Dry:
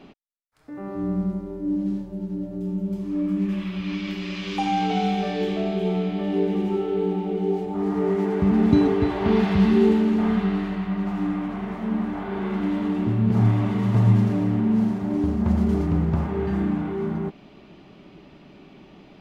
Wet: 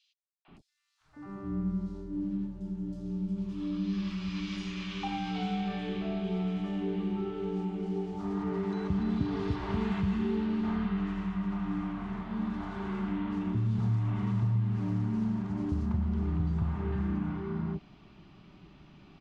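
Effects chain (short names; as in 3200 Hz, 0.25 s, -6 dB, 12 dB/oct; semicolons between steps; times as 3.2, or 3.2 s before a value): graphic EQ 250/500/2000 Hz -7/-12/-6 dB; compressor 5:1, threshold -26 dBFS, peak gain reduction 10.5 dB; air absorption 80 m; three bands offset in time highs, mids, lows 0.45/0.48 s, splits 680/3500 Hz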